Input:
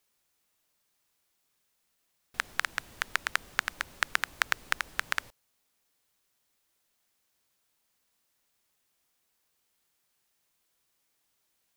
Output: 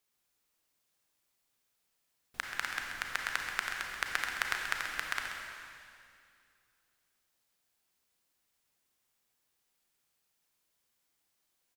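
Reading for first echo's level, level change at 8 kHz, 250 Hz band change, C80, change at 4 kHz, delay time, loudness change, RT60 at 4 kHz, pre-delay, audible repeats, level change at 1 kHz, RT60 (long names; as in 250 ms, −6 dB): −9.5 dB, −3.0 dB, −2.5 dB, 2.0 dB, −3.0 dB, 132 ms, −3.5 dB, 2.3 s, 30 ms, 1, −3.0 dB, 2.3 s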